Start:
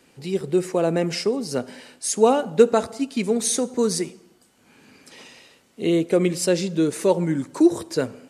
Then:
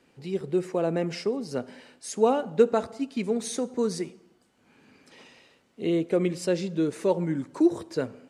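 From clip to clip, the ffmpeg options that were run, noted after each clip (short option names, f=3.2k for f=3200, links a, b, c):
-af "lowpass=f=3.3k:p=1,volume=-5dB"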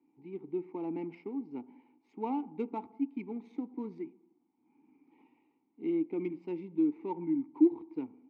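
-filter_complex "[0:a]adynamicsmooth=sensitivity=3:basefreq=1.5k,asplit=3[a][b][c];[a]bandpass=f=300:t=q:w=8,volume=0dB[d];[b]bandpass=f=870:t=q:w=8,volume=-6dB[e];[c]bandpass=f=2.24k:t=q:w=8,volume=-9dB[f];[d][e][f]amix=inputs=3:normalize=0,volume=2dB"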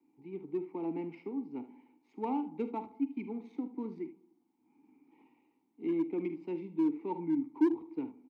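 -filter_complex "[0:a]aecho=1:1:48|75:0.211|0.2,acrossover=split=140|300|770[a][b][c][d];[c]asoftclip=type=hard:threshold=-32dB[e];[a][b][e][d]amix=inputs=4:normalize=0"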